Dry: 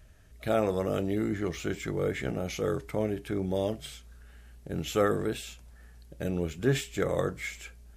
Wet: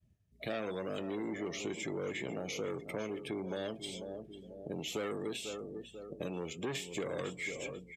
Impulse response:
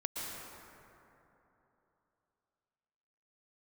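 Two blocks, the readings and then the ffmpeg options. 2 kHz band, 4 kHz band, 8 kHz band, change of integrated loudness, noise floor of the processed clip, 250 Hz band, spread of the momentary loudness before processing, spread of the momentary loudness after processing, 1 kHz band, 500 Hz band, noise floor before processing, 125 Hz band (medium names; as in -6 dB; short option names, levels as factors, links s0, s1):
-4.5 dB, -2.0 dB, -3.5 dB, -8.5 dB, -64 dBFS, -8.0 dB, 12 LU, 7 LU, -9.0 dB, -8.5 dB, -53 dBFS, -13.0 dB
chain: -filter_complex "[0:a]acontrast=34,equalizer=f=1500:t=o:w=0.35:g=-13,asoftclip=type=tanh:threshold=0.0891,aecho=1:1:491|982|1473|1964:0.188|0.0904|0.0434|0.0208,agate=range=0.0224:threshold=0.00447:ratio=3:detection=peak,afftdn=nr=23:nf=-47,highpass=190,highshelf=f=11000:g=-5,acrossover=split=310|1700[s0][s1][s2];[s0]acompressor=threshold=0.00708:ratio=4[s3];[s1]acompressor=threshold=0.0112:ratio=4[s4];[s2]acompressor=threshold=0.01:ratio=4[s5];[s3][s4][s5]amix=inputs=3:normalize=0,volume=0.891"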